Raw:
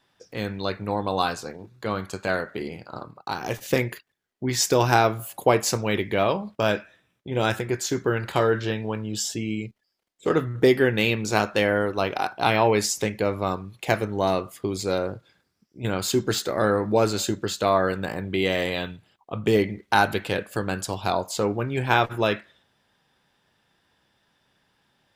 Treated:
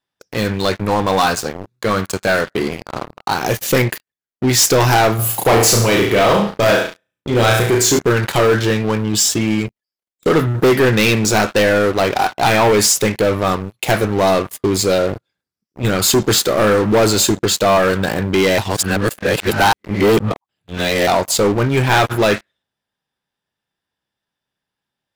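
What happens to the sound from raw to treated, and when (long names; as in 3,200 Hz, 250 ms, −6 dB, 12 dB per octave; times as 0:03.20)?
0:05.15–0:07.99: flutter between parallel walls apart 6 metres, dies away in 0.48 s
0:18.58–0:21.07: reverse
whole clip: high-shelf EQ 7,100 Hz +6.5 dB; leveller curve on the samples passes 5; level −5.5 dB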